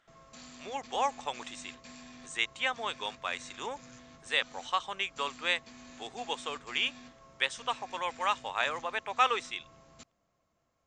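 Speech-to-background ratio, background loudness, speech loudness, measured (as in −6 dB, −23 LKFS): 18.5 dB, −51.5 LKFS, −33.0 LKFS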